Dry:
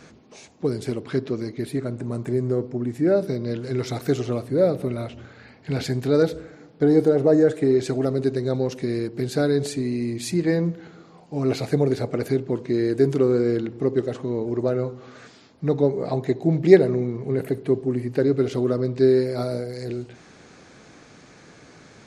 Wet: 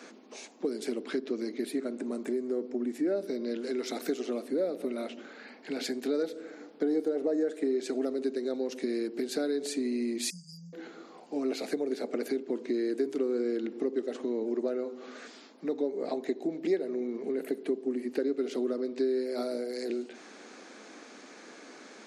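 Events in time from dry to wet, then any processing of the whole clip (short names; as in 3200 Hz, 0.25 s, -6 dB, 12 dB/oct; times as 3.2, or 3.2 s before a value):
10.3–10.73 brick-wall FIR band-stop 180–4600 Hz
whole clip: compressor 4:1, threshold -27 dBFS; dynamic EQ 1000 Hz, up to -5 dB, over -51 dBFS, Q 1.5; steep high-pass 220 Hz 48 dB/oct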